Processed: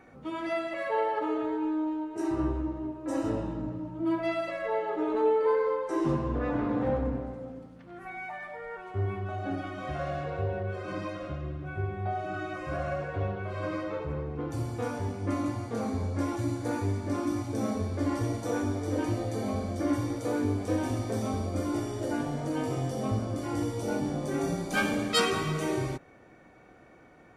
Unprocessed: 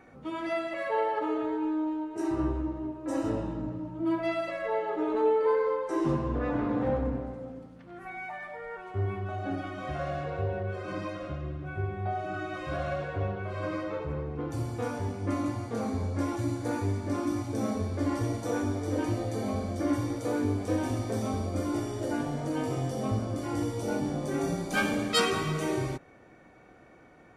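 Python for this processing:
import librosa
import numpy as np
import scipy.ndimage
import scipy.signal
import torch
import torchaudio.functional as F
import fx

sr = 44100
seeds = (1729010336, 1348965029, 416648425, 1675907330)

y = fx.peak_eq(x, sr, hz=3600.0, db=-9.0, octaves=0.53, at=(12.53, 13.14))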